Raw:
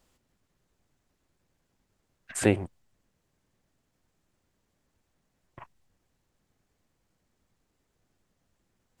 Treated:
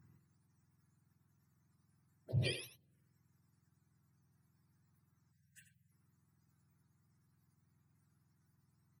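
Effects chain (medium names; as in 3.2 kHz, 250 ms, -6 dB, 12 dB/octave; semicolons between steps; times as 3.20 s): spectrum inverted on a logarithmic axis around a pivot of 1 kHz; compression 2.5:1, threshold -37 dBFS, peak gain reduction 12 dB; touch-sensitive phaser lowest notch 510 Hz, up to 1.4 kHz, full sweep at -46 dBFS; on a send: delay 87 ms -10.5 dB; on the sum: spectral selection erased 5.32–5.92 s, 210–1500 Hz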